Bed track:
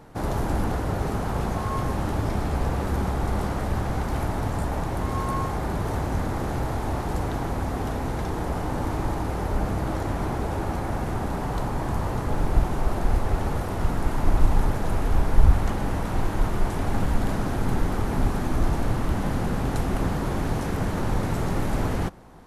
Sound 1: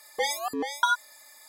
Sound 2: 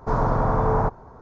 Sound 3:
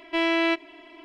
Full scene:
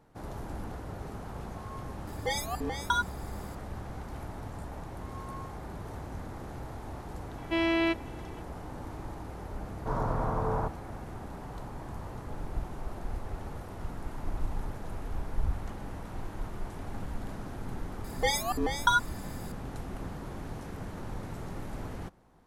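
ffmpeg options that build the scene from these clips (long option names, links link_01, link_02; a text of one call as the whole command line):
ffmpeg -i bed.wav -i cue0.wav -i cue1.wav -i cue2.wav -filter_complex "[1:a]asplit=2[link_01][link_02];[0:a]volume=-14dB[link_03];[3:a]equalizer=frequency=130:width_type=o:width=2:gain=12[link_04];[link_01]atrim=end=1.48,asetpts=PTS-STARTPTS,volume=-4.5dB,afade=type=in:duration=0.004:curve=hsin,afade=type=out:start_time=1.476:duration=0.004:curve=hsin,adelay=2070[link_05];[link_04]atrim=end=1.04,asetpts=PTS-STARTPTS,volume=-6.5dB,afade=type=in:duration=0.004:curve=hsin,afade=type=out:start_time=1.036:duration=0.004:curve=hsin,adelay=325458S[link_06];[2:a]atrim=end=1.21,asetpts=PTS-STARTPTS,volume=-9.5dB,afade=type=in:duration=0.004:curve=hsin,afade=type=out:start_time=1.206:duration=0.004:curve=hsin,adelay=9790[link_07];[link_02]atrim=end=1.48,asetpts=PTS-STARTPTS,volume=-0.5dB,afade=type=in:duration=0.004:curve=hsin,afade=type=out:start_time=1.476:duration=0.004:curve=hsin,adelay=18040[link_08];[link_03][link_05][link_06][link_07][link_08]amix=inputs=5:normalize=0" out.wav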